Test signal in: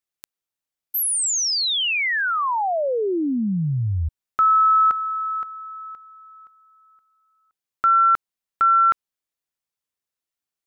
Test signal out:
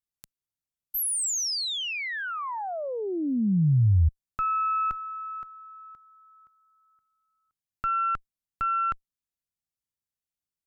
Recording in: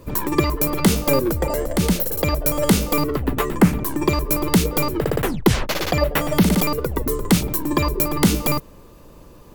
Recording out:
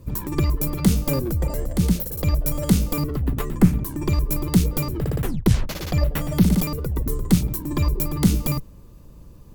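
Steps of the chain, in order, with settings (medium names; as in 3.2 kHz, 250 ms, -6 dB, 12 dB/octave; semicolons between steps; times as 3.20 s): Chebyshev shaper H 2 -10 dB, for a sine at -1 dBFS; tone controls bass +14 dB, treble +5 dB; trim -10.5 dB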